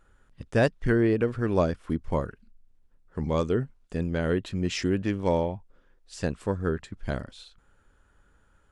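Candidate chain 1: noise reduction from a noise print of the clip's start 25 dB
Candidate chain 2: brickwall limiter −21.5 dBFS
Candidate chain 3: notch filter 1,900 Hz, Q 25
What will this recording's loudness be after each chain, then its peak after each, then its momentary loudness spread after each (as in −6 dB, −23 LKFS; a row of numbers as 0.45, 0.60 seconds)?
−28.0, −33.5, −28.0 LKFS; −11.0, −21.5, −11.0 dBFS; 11, 10, 11 LU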